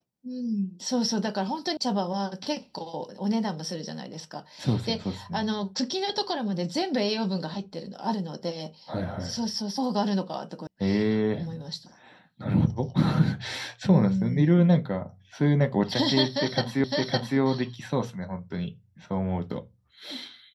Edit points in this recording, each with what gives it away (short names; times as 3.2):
1.77 sound cut off
10.67 sound cut off
16.84 repeat of the last 0.56 s